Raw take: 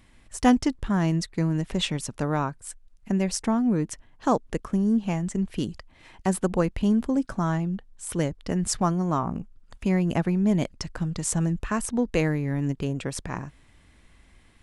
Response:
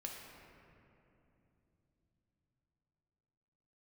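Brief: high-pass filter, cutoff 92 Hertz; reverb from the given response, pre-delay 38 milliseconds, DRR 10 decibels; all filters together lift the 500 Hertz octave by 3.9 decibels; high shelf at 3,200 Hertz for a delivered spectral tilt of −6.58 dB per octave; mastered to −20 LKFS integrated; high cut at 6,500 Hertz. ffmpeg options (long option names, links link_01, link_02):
-filter_complex "[0:a]highpass=92,lowpass=6500,equalizer=frequency=500:width_type=o:gain=5,highshelf=frequency=3200:gain=-5,asplit=2[link_01][link_02];[1:a]atrim=start_sample=2205,adelay=38[link_03];[link_02][link_03]afir=irnorm=-1:irlink=0,volume=-8dB[link_04];[link_01][link_04]amix=inputs=2:normalize=0,volume=5dB"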